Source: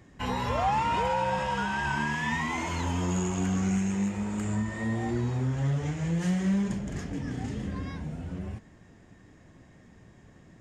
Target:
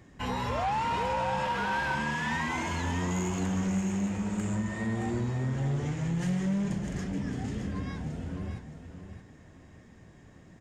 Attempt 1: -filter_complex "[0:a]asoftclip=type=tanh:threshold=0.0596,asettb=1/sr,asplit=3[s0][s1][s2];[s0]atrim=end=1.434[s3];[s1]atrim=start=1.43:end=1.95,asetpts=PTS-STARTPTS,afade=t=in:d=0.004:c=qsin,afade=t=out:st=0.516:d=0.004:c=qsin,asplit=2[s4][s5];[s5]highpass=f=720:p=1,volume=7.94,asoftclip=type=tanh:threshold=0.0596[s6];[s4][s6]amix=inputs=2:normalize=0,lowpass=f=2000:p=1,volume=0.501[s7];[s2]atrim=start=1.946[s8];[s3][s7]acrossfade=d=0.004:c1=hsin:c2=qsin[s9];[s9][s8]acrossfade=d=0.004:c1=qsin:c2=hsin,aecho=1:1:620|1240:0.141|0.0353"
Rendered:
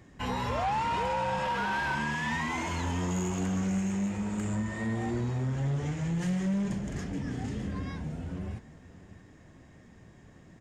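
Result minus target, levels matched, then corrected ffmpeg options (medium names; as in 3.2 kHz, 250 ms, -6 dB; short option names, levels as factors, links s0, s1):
echo-to-direct -8 dB
-filter_complex "[0:a]asoftclip=type=tanh:threshold=0.0596,asettb=1/sr,asplit=3[s0][s1][s2];[s0]atrim=end=1.434[s3];[s1]atrim=start=1.43:end=1.95,asetpts=PTS-STARTPTS,afade=t=in:d=0.004:c=qsin,afade=t=out:st=0.516:d=0.004:c=qsin,asplit=2[s4][s5];[s5]highpass=f=720:p=1,volume=7.94,asoftclip=type=tanh:threshold=0.0596[s6];[s4][s6]amix=inputs=2:normalize=0,lowpass=f=2000:p=1,volume=0.501[s7];[s2]atrim=start=1.946[s8];[s3][s7]acrossfade=d=0.004:c1=hsin:c2=qsin[s9];[s9][s8]acrossfade=d=0.004:c1=qsin:c2=hsin,aecho=1:1:620|1240|1860:0.355|0.0887|0.0222"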